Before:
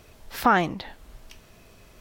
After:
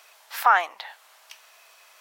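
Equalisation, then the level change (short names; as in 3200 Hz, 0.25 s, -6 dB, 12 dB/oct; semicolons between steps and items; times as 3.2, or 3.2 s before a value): HPF 770 Hz 24 dB/oct; dynamic EQ 4600 Hz, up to -7 dB, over -43 dBFS, Q 0.83; +4.0 dB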